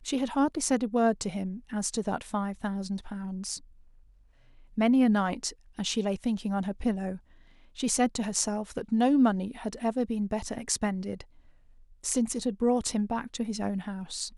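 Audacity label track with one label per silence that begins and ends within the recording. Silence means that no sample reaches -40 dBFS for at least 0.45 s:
3.580000	4.780000	silence
7.170000	7.780000	silence
11.210000	12.040000	silence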